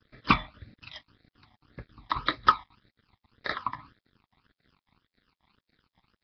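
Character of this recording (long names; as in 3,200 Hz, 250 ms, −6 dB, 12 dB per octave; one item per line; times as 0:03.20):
chopped level 3.7 Hz, depth 60%, duty 75%
a quantiser's noise floor 10 bits, dither none
phaser sweep stages 12, 1.8 Hz, lowest notch 460–1,000 Hz
Nellymoser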